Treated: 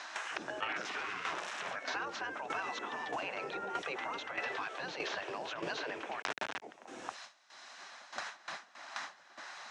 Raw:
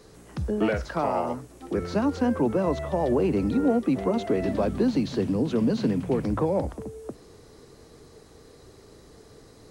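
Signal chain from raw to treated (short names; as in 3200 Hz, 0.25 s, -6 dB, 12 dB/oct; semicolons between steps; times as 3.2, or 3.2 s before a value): 0.76–1.76 zero-crossing step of -33 dBFS; spectral gate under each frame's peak -15 dB weak; gate with hold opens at -47 dBFS; 6.37–6.82 spectral gain 880–1800 Hz -6 dB; limiter -32.5 dBFS, peak gain reduction 11.5 dB; tremolo saw down 1.6 Hz, depth 75%; 6.22–6.62 companded quantiser 2-bit; speaker cabinet 330–5800 Hz, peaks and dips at 530 Hz -4 dB, 1600 Hz +5 dB, 2600 Hz +3 dB, 4600 Hz -7 dB; three-band squash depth 100%; gain +6.5 dB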